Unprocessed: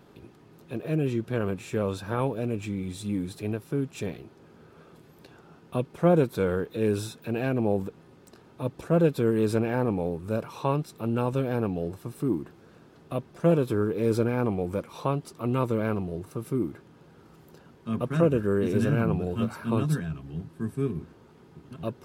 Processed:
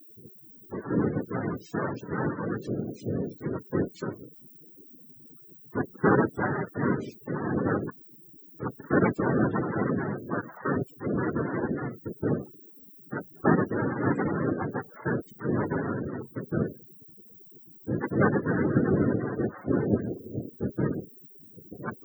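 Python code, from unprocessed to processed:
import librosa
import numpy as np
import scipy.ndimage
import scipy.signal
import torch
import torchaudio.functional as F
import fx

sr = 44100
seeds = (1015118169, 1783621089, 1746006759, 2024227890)

y = fx.noise_vocoder(x, sr, seeds[0], bands=3)
y = fx.dmg_noise_colour(y, sr, seeds[1], colour='violet', level_db=-43.0)
y = fx.spec_topn(y, sr, count=32)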